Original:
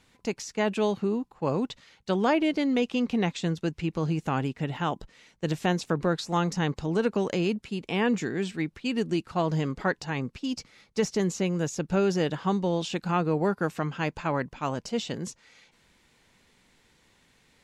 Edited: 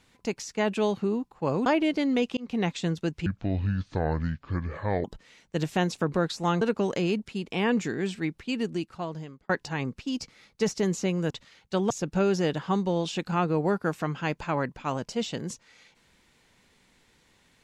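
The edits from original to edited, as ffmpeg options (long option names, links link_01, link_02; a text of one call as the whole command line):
ffmpeg -i in.wav -filter_complex "[0:a]asplit=9[link_01][link_02][link_03][link_04][link_05][link_06][link_07][link_08][link_09];[link_01]atrim=end=1.662[link_10];[link_02]atrim=start=2.258:end=2.97,asetpts=PTS-STARTPTS,afade=type=out:start_time=0.708:duration=0.004:curve=hsin[link_11];[link_03]atrim=start=2.97:end=3.864,asetpts=PTS-STARTPTS,afade=type=in:duration=0.35:curve=qsin[link_12];[link_04]atrim=start=3.86:end=4.93,asetpts=PTS-STARTPTS,asetrate=26460,aresample=44100[link_13];[link_05]atrim=start=4.926:end=6.502[link_14];[link_06]atrim=start=6.978:end=9.86,asetpts=PTS-STARTPTS,afade=type=out:start_time=1.822:duration=1.06[link_15];[link_07]atrim=start=9.86:end=11.672,asetpts=PTS-STARTPTS,afade=type=in:duration=0.004:curve=hsin[link_16];[link_08]atrim=start=1.658:end=2.262[link_17];[link_09]atrim=start=11.668[link_18];[link_11][link_12]concat=n=2:v=0:a=1[link_19];[link_10][link_19]acrossfade=duration=0.004:curve1=hsin:curve2=hsin[link_20];[link_20][link_13]acrossfade=duration=0.004:curve1=hsin:curve2=hsin[link_21];[link_21][link_14]acrossfade=duration=0.004:curve1=hsin:curve2=hsin[link_22];[link_15][link_16]concat=n=2:v=0:a=1[link_23];[link_22][link_23]acrossfade=duration=0.004:curve1=hsin:curve2=hsin[link_24];[link_24][link_17]acrossfade=duration=0.004:curve1=hsin:curve2=hsin[link_25];[link_25][link_18]acrossfade=duration=0.004:curve1=hsin:curve2=hsin" out.wav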